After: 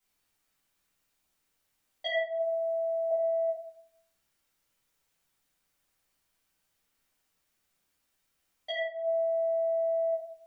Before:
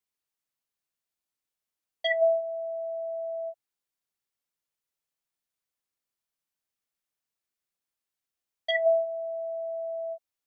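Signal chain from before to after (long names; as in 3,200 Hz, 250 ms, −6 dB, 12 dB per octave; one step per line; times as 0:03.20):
0:02.05–0:03.11: low-shelf EQ 500 Hz −9 dB
compressor whose output falls as the input rises −34 dBFS, ratio −1
rectangular room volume 66 cubic metres, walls mixed, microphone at 2 metres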